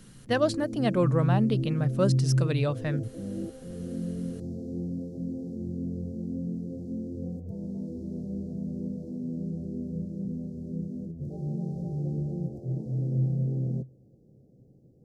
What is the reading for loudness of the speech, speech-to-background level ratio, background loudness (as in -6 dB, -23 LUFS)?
-28.0 LUFS, 4.5 dB, -32.5 LUFS